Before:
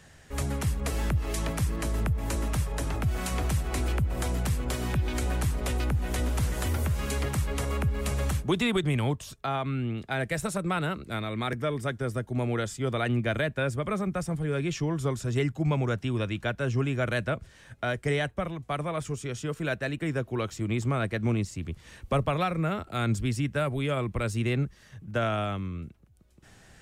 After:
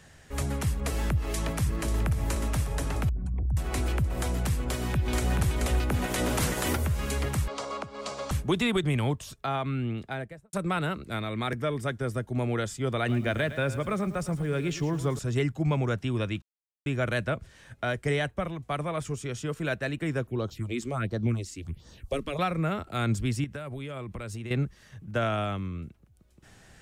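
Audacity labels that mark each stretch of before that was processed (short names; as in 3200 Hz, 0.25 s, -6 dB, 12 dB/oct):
1.110000	1.920000	echo throw 0.54 s, feedback 70%, level -10 dB
3.090000	3.570000	formant sharpening exponent 3
4.620000	5.360000	echo throw 0.43 s, feedback 15%, level -2.5 dB
5.890000	6.750000	spectral limiter ceiling under each frame's peak by 16 dB
7.480000	8.310000	speaker cabinet 370–6900 Hz, peaks and dips at 400 Hz -4 dB, 620 Hz +4 dB, 1100 Hz +5 dB, 1800 Hz -9 dB, 2600 Hz -5 dB, 4600 Hz +5 dB
9.920000	10.530000	studio fade out
12.970000	15.190000	lo-fi delay 0.111 s, feedback 35%, word length 8-bit, level -13 dB
16.420000	16.860000	mute
20.270000	22.390000	phaser stages 4, 1.4 Hz, lowest notch 110–2400 Hz
23.440000	24.510000	compressor 10:1, threshold -33 dBFS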